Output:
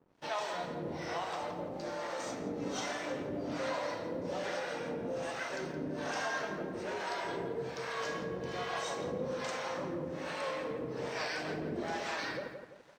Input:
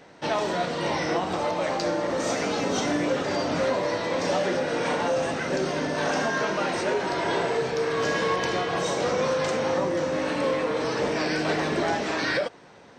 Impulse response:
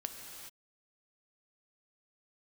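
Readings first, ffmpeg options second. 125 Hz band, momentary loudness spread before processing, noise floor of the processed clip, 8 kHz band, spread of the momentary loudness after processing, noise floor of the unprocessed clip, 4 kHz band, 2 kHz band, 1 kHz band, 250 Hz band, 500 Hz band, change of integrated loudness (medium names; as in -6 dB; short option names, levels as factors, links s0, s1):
-11.0 dB, 2 LU, -48 dBFS, -11.0 dB, 3 LU, -49 dBFS, -11.5 dB, -11.0 dB, -11.0 dB, -11.5 dB, -12.5 dB, -12.0 dB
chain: -filter_complex "[0:a]acrossover=split=520[s0][s1];[s0]aeval=exprs='val(0)*(1-1/2+1/2*cos(2*PI*1.2*n/s))':c=same[s2];[s1]aeval=exprs='val(0)*(1-1/2-1/2*cos(2*PI*1.2*n/s))':c=same[s3];[s2][s3]amix=inputs=2:normalize=0,asplit=2[s4][s5];[s5]adelay=169,lowpass=f=2200:p=1,volume=0.473,asplit=2[s6][s7];[s7]adelay=169,lowpass=f=2200:p=1,volume=0.48,asplit=2[s8][s9];[s9]adelay=169,lowpass=f=2200:p=1,volume=0.48,asplit=2[s10][s11];[s11]adelay=169,lowpass=f=2200:p=1,volume=0.48,asplit=2[s12][s13];[s13]adelay=169,lowpass=f=2200:p=1,volume=0.48,asplit=2[s14][s15];[s15]adelay=169,lowpass=f=2200:p=1,volume=0.48[s16];[s4][s6][s8][s10][s12][s14][s16]amix=inputs=7:normalize=0,aeval=exprs='sgn(val(0))*max(abs(val(0))-0.00141,0)':c=same,volume=0.447"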